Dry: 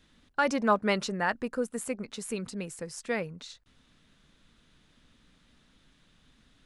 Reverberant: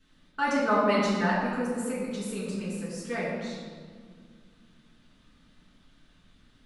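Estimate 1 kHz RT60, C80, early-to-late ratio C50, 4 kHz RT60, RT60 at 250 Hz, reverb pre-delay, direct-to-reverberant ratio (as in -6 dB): 1.8 s, 1.0 dB, -1.0 dB, 1.1 s, 3.2 s, 3 ms, -9.5 dB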